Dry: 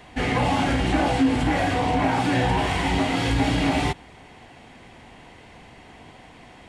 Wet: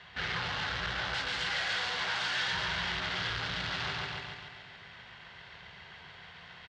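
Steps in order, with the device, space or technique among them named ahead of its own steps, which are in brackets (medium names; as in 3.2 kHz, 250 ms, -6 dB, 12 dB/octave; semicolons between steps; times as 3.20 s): 1.14–2.53 s: RIAA curve recording; feedback delay 140 ms, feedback 56%, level -4 dB; scooped metal amplifier (valve stage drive 30 dB, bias 0.65; cabinet simulation 92–4400 Hz, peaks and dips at 170 Hz +8 dB, 380 Hz +8 dB, 770 Hz -5 dB, 1.5 kHz +6 dB, 2.4 kHz -6 dB; amplifier tone stack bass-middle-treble 10-0-10); trim +7 dB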